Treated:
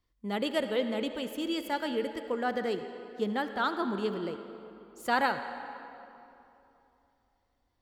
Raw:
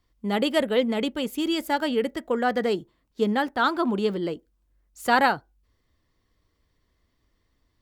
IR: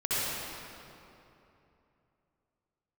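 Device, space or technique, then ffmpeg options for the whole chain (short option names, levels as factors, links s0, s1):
filtered reverb send: -filter_complex "[0:a]asplit=2[s0][s1];[s1]highpass=240,lowpass=8300[s2];[1:a]atrim=start_sample=2205[s3];[s2][s3]afir=irnorm=-1:irlink=0,volume=0.126[s4];[s0][s4]amix=inputs=2:normalize=0,volume=0.398"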